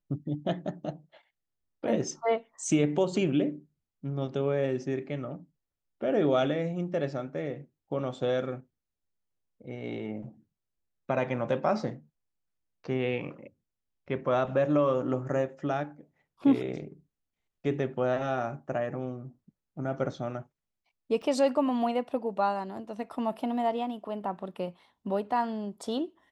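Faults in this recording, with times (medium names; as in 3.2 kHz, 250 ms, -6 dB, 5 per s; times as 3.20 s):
21.22–21.23 s: dropout 5.6 ms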